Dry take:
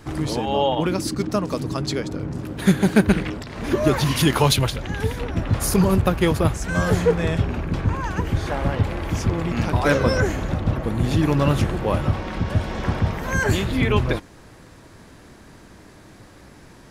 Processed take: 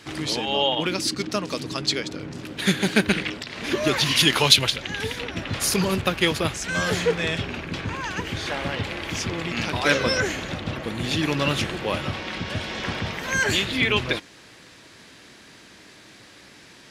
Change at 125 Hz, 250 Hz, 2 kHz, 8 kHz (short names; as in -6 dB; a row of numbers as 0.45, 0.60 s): -9.0, -5.5, +3.0, +2.5 dB